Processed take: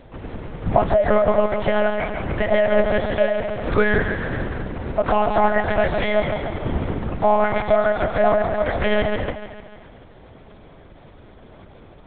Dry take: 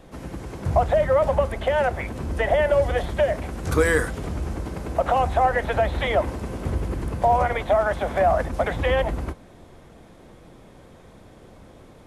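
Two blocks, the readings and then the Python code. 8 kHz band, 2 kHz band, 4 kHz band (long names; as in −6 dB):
below −35 dB, +3.0 dB, +2.5 dB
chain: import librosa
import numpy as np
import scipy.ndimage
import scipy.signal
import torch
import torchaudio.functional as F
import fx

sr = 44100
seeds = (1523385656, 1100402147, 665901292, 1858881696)

y = fx.echo_thinned(x, sr, ms=147, feedback_pct=60, hz=230.0, wet_db=-6.5)
y = fx.lpc_monotone(y, sr, seeds[0], pitch_hz=210.0, order=8)
y = y * 10.0 ** (2.0 / 20.0)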